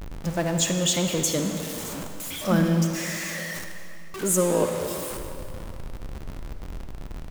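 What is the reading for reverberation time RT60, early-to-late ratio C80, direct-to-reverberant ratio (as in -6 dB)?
2.7 s, 6.0 dB, 5.0 dB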